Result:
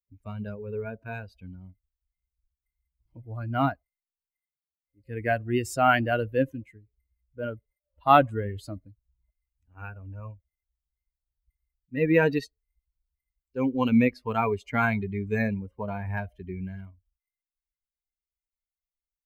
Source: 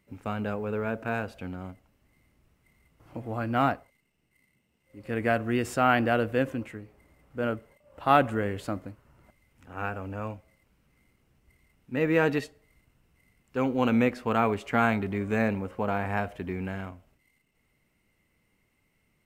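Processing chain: expander on every frequency bin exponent 2; trim +5.5 dB

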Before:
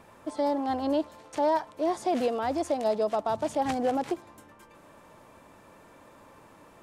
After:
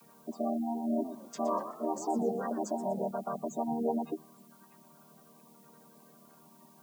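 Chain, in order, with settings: vocoder on a held chord major triad, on D#3; tone controls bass +5 dB, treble +13 dB; spectral gate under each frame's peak -20 dB strong; tilt shelf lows -8 dB, about 1.2 kHz; added noise blue -64 dBFS; 0.85–3.11 s: modulated delay 124 ms, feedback 35%, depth 215 cents, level -10.5 dB

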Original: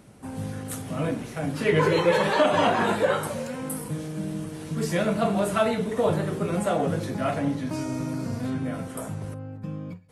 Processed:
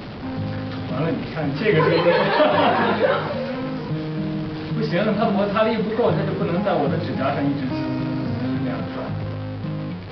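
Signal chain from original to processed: jump at every zero crossing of -31.5 dBFS; resampled via 11.025 kHz; trim +3 dB

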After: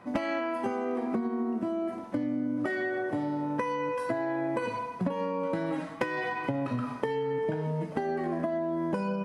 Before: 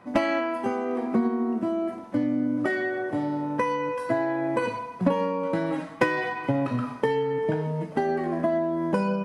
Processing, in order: compression, threshold -27 dBFS, peak gain reduction 10.5 dB

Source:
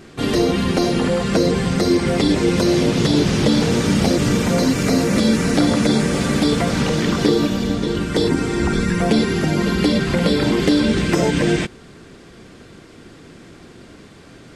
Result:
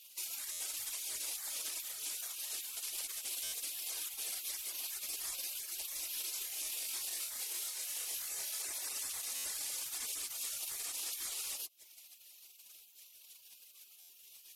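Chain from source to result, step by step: CVSD coder 64 kbps; compression 12:1, threshold -21 dBFS, peak gain reduction 11 dB; FFT filter 160 Hz 0 dB, 350 Hz -13 dB, 920 Hz +8 dB, 1.9 kHz +10 dB, 2.7 kHz -6 dB, 8.5 kHz +13 dB; reverb removal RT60 0.74 s; spectral gate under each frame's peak -25 dB weak; 6.33–8.62 s: doubling 25 ms -3.5 dB; peak limiter -33 dBFS, peak gain reduction 8 dB; treble shelf 2.3 kHz +9.5 dB; buffer glitch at 0.51/3.43/9.35/14.00 s, samples 512, times 7; trim -5.5 dB

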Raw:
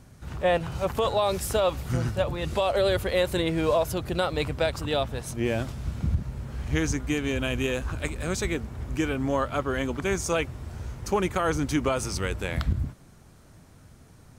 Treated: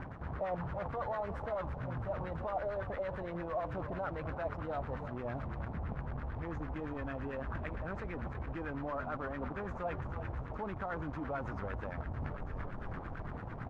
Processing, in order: in parallel at -4.5 dB: decimation with a swept rate 12×, swing 100% 0.2 Hz; on the sum: peak limiter -19 dBFS, peak gain reduction 8.5 dB; frequency-shifting echo 349 ms, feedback 58%, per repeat -33 Hz, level -12 dB; tape speed +5%; reverse; compression 8:1, threshold -41 dBFS, peak gain reduction 18 dB; reverse; dynamic bell 380 Hz, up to -5 dB, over -58 dBFS, Q 2.6; companded quantiser 4-bit; LFO low-pass sine 8.9 Hz 750–1700 Hz; trim +3.5 dB

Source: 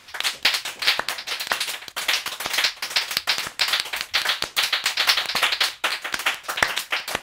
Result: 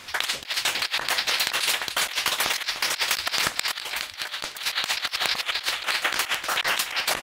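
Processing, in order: feedback delay 299 ms, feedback 39%, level -17 dB; compressor with a negative ratio -27 dBFS, ratio -0.5; 3.71–4.57 s: feedback comb 300 Hz, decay 0.7 s, mix 50%; trim +2 dB

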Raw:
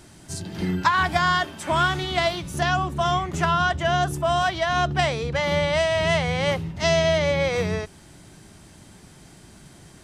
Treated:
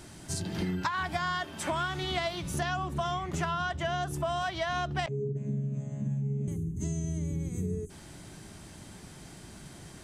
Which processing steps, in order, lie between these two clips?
5.06–6.48 s: vocoder on a held chord bare fifth, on C#3; 5.08–7.90 s: time-frequency box 440–6100 Hz -28 dB; compression 6:1, threshold -29 dBFS, peak gain reduction 14 dB

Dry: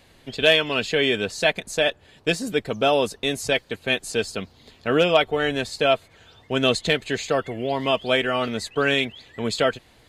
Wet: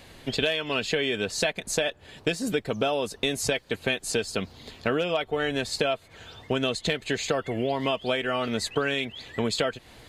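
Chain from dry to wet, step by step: compression 12:1, threshold -28 dBFS, peak gain reduction 17 dB; trim +5.5 dB

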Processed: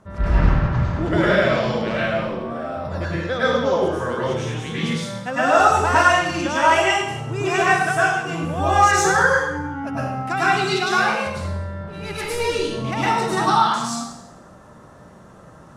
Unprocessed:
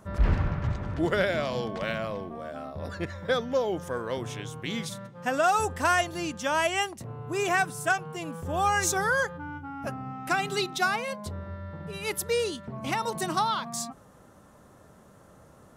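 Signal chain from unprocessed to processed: 11.71–12.39 s: partial rectifier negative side -7 dB; distance through air 53 m; plate-style reverb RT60 0.86 s, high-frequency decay 0.95×, pre-delay 90 ms, DRR -9.5 dB

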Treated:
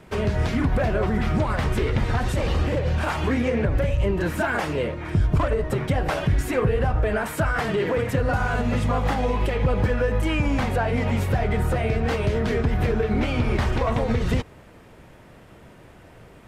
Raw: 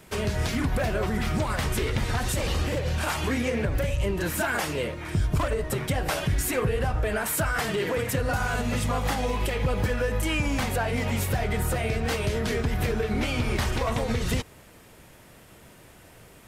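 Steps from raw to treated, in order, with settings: low-pass 1.7 kHz 6 dB/octave; trim +4.5 dB

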